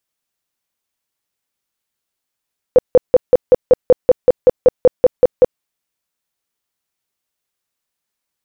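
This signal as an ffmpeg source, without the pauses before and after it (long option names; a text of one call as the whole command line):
ffmpeg -f lavfi -i "aevalsrc='0.708*sin(2*PI*504*mod(t,0.19))*lt(mod(t,0.19),13/504)':duration=2.85:sample_rate=44100" out.wav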